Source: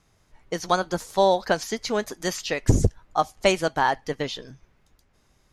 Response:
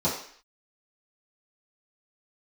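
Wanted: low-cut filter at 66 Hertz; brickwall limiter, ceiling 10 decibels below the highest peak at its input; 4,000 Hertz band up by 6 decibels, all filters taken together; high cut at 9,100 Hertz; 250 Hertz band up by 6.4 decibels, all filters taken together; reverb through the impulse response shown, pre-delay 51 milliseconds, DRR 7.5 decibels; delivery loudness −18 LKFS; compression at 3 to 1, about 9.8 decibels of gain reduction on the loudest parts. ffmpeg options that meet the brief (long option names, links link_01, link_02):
-filter_complex "[0:a]highpass=66,lowpass=9100,equalizer=frequency=250:width_type=o:gain=9,equalizer=frequency=4000:width_type=o:gain=7.5,acompressor=threshold=-26dB:ratio=3,alimiter=limit=-20.5dB:level=0:latency=1,asplit=2[link_01][link_02];[1:a]atrim=start_sample=2205,adelay=51[link_03];[link_02][link_03]afir=irnorm=-1:irlink=0,volume=-19.5dB[link_04];[link_01][link_04]amix=inputs=2:normalize=0,volume=13.5dB"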